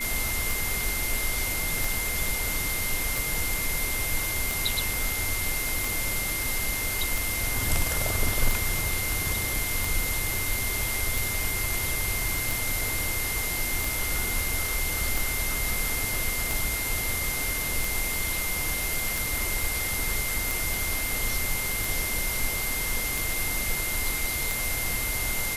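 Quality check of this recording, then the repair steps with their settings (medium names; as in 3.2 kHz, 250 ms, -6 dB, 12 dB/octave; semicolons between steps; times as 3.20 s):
tick 45 rpm
whine 2.1 kHz -32 dBFS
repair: de-click; band-stop 2.1 kHz, Q 30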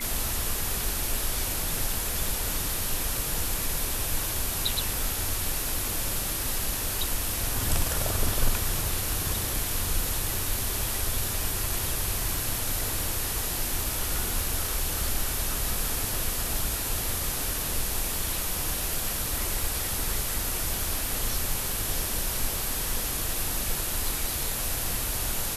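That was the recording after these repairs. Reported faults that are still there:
nothing left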